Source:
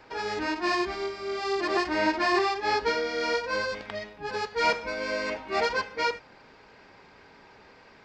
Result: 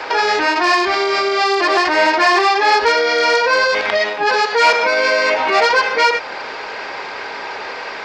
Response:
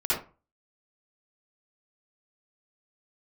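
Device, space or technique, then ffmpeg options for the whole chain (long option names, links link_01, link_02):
loud club master: -filter_complex "[0:a]asettb=1/sr,asplit=3[link_01][link_02][link_03];[link_01]atrim=end=3.974[link_04];[link_02]atrim=start=3.97:end=5.33,asetpts=PTS-STARTPTS,afade=type=in:duration=0.004:curve=qsin,afade=type=out:start_time=1.356:duration=0.004:curve=qsin,highpass=150[link_05];[link_03]atrim=start=5.326[link_06];[link_04][link_05]acrossfade=duration=0.004:curve1=hsin:curve2=qsin[link_07];[link_07][link_06]acrossfade=duration=0.004:curve1=qsin:curve2=hsin,acompressor=threshold=-34dB:ratio=1.5,asoftclip=type=hard:threshold=-24.5dB,alimiter=level_in=32.5dB:limit=-1dB:release=50:level=0:latency=1,acrossover=split=400 7500:gain=0.1 1 0.178[link_08][link_09][link_10];[link_08][link_09][link_10]amix=inputs=3:normalize=0,volume=-5dB"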